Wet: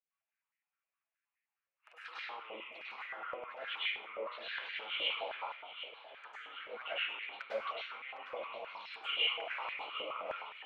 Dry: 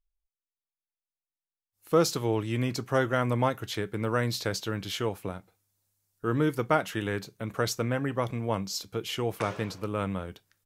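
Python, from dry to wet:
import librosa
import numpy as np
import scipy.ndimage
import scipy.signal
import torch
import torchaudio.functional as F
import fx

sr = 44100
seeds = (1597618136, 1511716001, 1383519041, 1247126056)

y = scipy.signal.sosfilt(scipy.signal.butter(8, 2700.0, 'lowpass', fs=sr, output='sos'), x)
y = fx.over_compress(y, sr, threshold_db=-36.0, ratio=-1.0)
y = fx.env_flanger(y, sr, rest_ms=10.9, full_db=-33.5)
y = np.diff(y, prepend=0.0)
y = fx.echo_feedback(y, sr, ms=757, feedback_pct=56, wet_db=-12.5)
y = fx.rev_plate(y, sr, seeds[0], rt60_s=0.82, hf_ratio=0.65, predelay_ms=90, drr_db=-9.0)
y = fx.filter_held_highpass(y, sr, hz=9.6, low_hz=550.0, high_hz=1900.0)
y = y * 10.0 ** (5.5 / 20.0)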